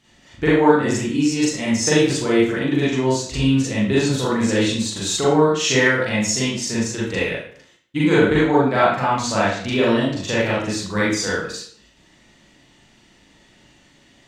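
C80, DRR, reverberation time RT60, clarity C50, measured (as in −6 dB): 4.5 dB, −8.5 dB, 0.55 s, −0.5 dB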